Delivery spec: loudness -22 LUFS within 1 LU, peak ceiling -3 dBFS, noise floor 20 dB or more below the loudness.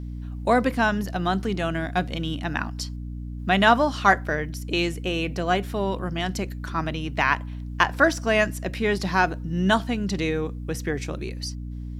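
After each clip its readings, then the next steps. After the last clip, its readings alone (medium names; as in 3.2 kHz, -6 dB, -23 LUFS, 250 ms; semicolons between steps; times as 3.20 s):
hum 60 Hz; highest harmonic 300 Hz; hum level -31 dBFS; loudness -24.5 LUFS; peak level -3.0 dBFS; loudness target -22.0 LUFS
-> de-hum 60 Hz, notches 5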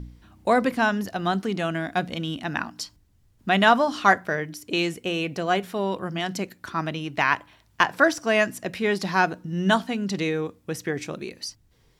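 hum not found; loudness -24.5 LUFS; peak level -3.0 dBFS; loudness target -22.0 LUFS
-> trim +2.5 dB; peak limiter -3 dBFS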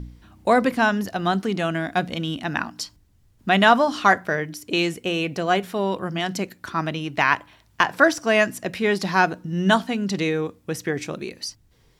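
loudness -22.5 LUFS; peak level -3.0 dBFS; noise floor -59 dBFS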